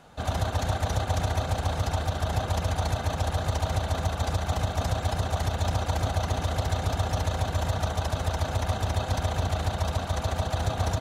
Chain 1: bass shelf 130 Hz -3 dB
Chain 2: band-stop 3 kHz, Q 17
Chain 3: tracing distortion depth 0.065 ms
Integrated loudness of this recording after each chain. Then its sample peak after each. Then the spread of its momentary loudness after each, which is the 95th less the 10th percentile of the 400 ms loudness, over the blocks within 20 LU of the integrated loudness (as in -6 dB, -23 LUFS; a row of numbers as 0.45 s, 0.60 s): -29.5 LUFS, -28.5 LUFS, -28.5 LUFS; -15.0 dBFS, -14.0 dBFS, -14.0 dBFS; 1 LU, 1 LU, 1 LU